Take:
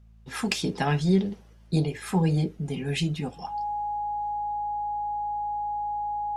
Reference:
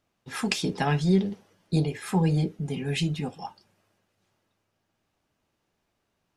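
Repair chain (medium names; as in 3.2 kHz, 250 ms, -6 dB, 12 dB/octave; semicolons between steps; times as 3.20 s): clip repair -8 dBFS; de-hum 55 Hz, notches 4; band-stop 830 Hz, Q 30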